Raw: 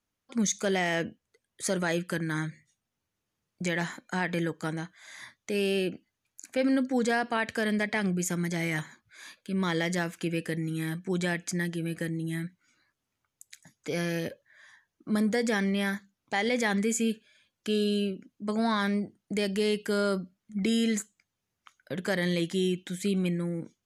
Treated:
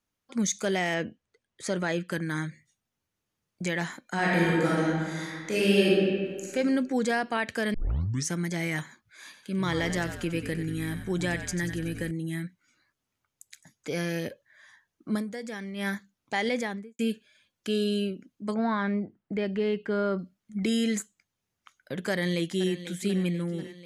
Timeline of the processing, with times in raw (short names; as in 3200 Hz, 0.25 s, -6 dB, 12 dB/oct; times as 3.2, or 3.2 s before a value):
0.94–2.12 air absorption 60 m
4.14–6.5 reverb throw, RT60 1.9 s, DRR -6.5 dB
7.74 tape start 0.59 s
9.24–12.11 frequency-shifting echo 93 ms, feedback 55%, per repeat -54 Hz, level -9.5 dB
15.13–15.87 dip -10 dB, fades 0.12 s
16.45–16.99 studio fade out
18.54–20.19 LPF 2100 Hz
22.11–22.84 echo throw 0.49 s, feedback 65%, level -12.5 dB